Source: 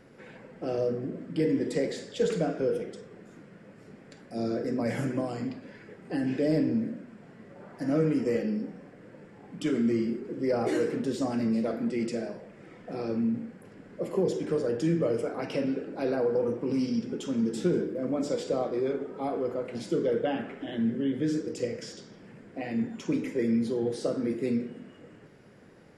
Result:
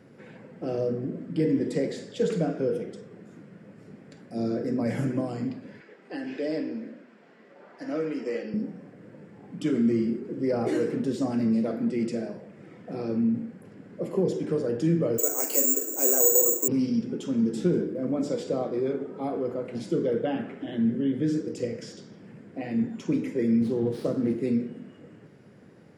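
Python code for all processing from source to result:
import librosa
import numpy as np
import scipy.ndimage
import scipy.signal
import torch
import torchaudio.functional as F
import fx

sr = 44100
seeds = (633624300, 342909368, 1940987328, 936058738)

y = fx.chain(x, sr, fx.bandpass_edges(low_hz=320.0, high_hz=4700.0),
    fx.tilt_eq(slope=2.0), at=(5.8, 8.54))
y = fx.chain(y, sr, fx.resample_bad(factor=6, down='filtered', up='zero_stuff'),
    fx.steep_highpass(hz=290.0, slope=48), at=(15.18, 16.68))
y = fx.chain(y, sr, fx.low_shelf(hz=160.0, db=5.0),
    fx.running_max(window=5), at=(23.61, 24.4))
y = scipy.signal.sosfilt(scipy.signal.butter(2, 110.0, 'highpass', fs=sr, output='sos'), y)
y = fx.low_shelf(y, sr, hz=290.0, db=9.0)
y = y * librosa.db_to_amplitude(-2.0)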